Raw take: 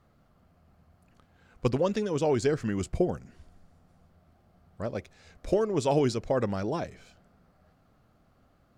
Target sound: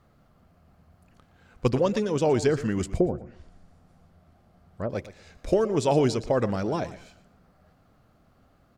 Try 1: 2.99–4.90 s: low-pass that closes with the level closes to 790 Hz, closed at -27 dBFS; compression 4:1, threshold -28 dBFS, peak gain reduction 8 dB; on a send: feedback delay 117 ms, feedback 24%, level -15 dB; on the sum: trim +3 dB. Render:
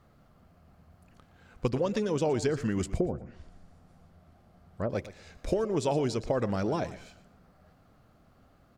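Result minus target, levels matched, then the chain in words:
compression: peak gain reduction +8 dB
2.99–4.90 s: low-pass that closes with the level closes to 790 Hz, closed at -27 dBFS; on a send: feedback delay 117 ms, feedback 24%, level -15 dB; on the sum: trim +3 dB

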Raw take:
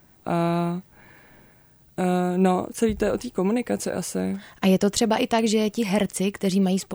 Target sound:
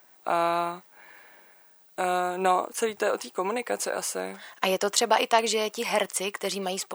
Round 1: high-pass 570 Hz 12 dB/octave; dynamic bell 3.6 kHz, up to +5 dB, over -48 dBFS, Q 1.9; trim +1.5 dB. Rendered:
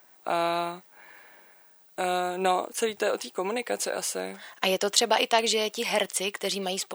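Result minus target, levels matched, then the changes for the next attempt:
4 kHz band +3.5 dB
change: dynamic bell 1.1 kHz, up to +5 dB, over -48 dBFS, Q 1.9

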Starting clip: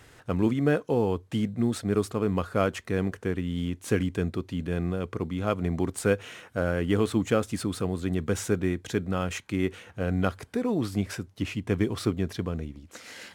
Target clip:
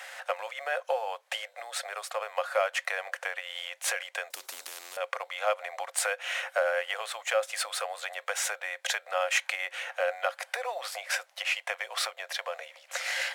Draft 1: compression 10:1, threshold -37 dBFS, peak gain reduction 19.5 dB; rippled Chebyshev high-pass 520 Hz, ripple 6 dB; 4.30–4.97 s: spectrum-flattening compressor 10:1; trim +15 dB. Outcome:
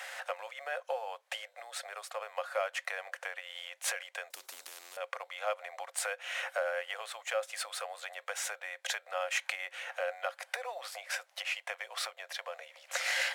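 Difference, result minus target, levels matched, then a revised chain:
compression: peak gain reduction +6.5 dB
compression 10:1, threshold -30 dBFS, peak gain reduction 13 dB; rippled Chebyshev high-pass 520 Hz, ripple 6 dB; 4.30–4.97 s: spectrum-flattening compressor 10:1; trim +15 dB

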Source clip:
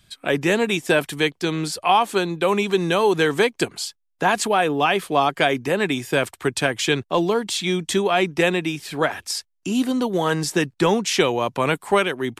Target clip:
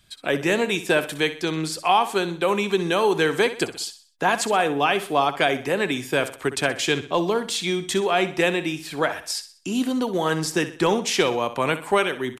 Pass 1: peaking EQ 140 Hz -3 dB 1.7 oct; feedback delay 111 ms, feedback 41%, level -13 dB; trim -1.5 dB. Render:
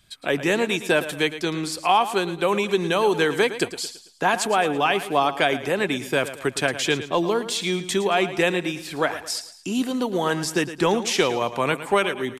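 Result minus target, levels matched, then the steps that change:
echo 48 ms late
change: feedback delay 63 ms, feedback 41%, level -13 dB

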